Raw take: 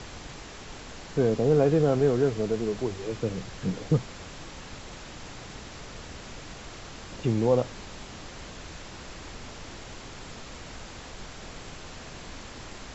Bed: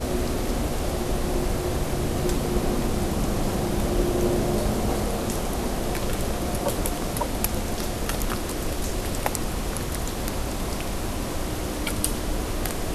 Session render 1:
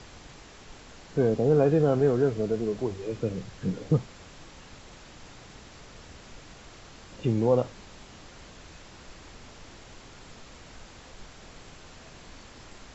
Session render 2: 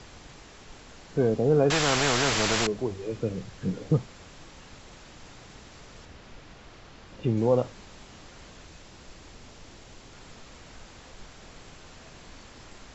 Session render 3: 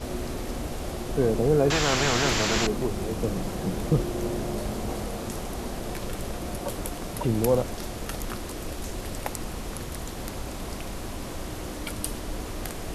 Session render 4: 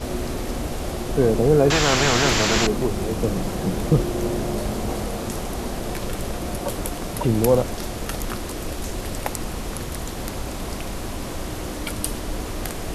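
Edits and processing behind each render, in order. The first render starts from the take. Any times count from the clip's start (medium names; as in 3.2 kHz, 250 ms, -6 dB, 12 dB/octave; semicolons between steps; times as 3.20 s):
noise print and reduce 6 dB
1.70–2.67 s: spectrum-flattening compressor 4:1; 6.05–7.37 s: distance through air 84 m; 8.65–10.13 s: peaking EQ 1.4 kHz -2.5 dB 1.9 oct
add bed -6.5 dB
trim +5 dB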